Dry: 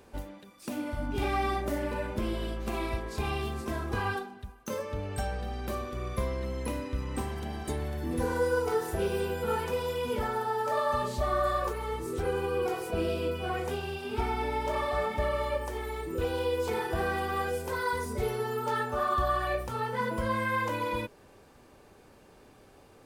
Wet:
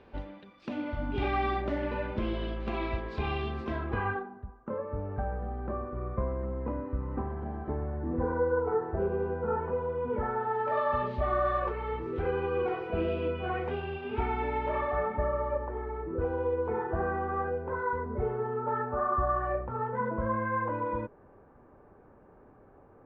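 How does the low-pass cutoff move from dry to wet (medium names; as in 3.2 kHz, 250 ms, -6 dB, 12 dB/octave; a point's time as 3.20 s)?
low-pass 24 dB/octave
3.71 s 3.6 kHz
4.41 s 1.4 kHz
10.00 s 1.4 kHz
10.77 s 2.7 kHz
14.63 s 2.7 kHz
15.32 s 1.5 kHz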